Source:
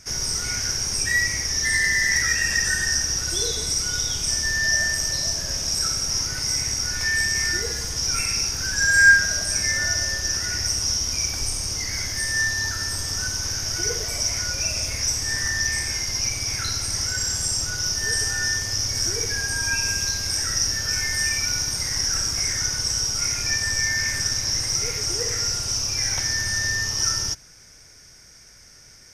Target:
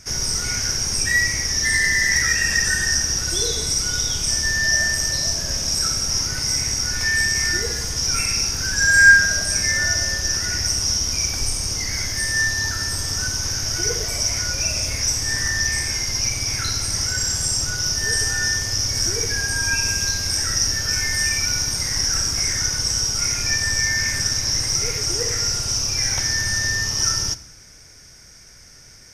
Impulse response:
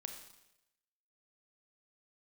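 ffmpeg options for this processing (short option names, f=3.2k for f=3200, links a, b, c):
-filter_complex "[0:a]asplit=2[a][b];[1:a]atrim=start_sample=2205,lowshelf=f=360:g=7.5[c];[b][c]afir=irnorm=-1:irlink=0,volume=-6dB[d];[a][d]amix=inputs=2:normalize=0"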